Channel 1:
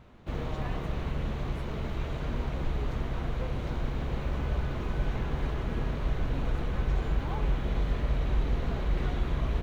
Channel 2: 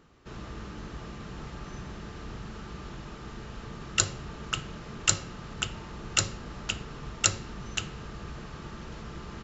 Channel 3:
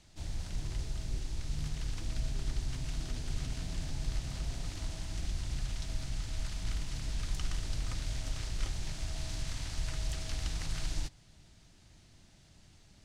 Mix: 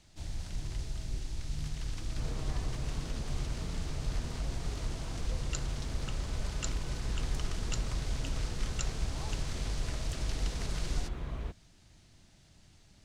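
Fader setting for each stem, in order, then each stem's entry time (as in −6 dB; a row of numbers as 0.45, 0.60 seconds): −9.0, −16.0, −0.5 decibels; 1.90, 1.55, 0.00 seconds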